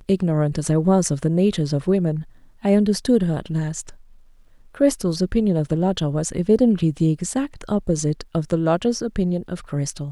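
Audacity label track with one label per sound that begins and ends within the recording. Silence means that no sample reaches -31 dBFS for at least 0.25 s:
2.640000	3.900000	sound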